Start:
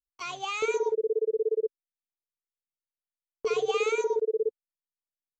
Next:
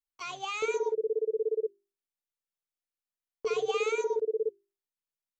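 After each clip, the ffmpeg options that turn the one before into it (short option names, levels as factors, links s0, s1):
-af "bandreject=f=50:t=h:w=6,bandreject=f=100:t=h:w=6,bandreject=f=150:t=h:w=6,bandreject=f=200:t=h:w=6,bandreject=f=250:t=h:w=6,bandreject=f=300:t=h:w=6,bandreject=f=350:t=h:w=6,bandreject=f=400:t=h:w=6,volume=0.75"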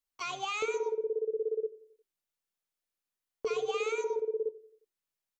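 -filter_complex "[0:a]acompressor=threshold=0.0158:ratio=2,asplit=2[s0][s1];[s1]adelay=89,lowpass=f=3600:p=1,volume=0.133,asplit=2[s2][s3];[s3]adelay=89,lowpass=f=3600:p=1,volume=0.48,asplit=2[s4][s5];[s5]adelay=89,lowpass=f=3600:p=1,volume=0.48,asplit=2[s6][s7];[s7]adelay=89,lowpass=f=3600:p=1,volume=0.48[s8];[s0][s2][s4][s6][s8]amix=inputs=5:normalize=0,volume=1.41"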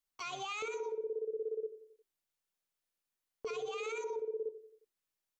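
-af "alimiter=level_in=2.51:limit=0.0631:level=0:latency=1:release=45,volume=0.398"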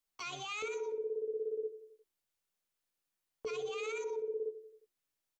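-filter_complex "[0:a]acrossover=split=520|1200[s0][s1][s2];[s0]asplit=2[s3][s4];[s4]adelay=14,volume=0.562[s5];[s3][s5]amix=inputs=2:normalize=0[s6];[s1]acompressor=threshold=0.00178:ratio=6[s7];[s6][s7][s2]amix=inputs=3:normalize=0,volume=1.12"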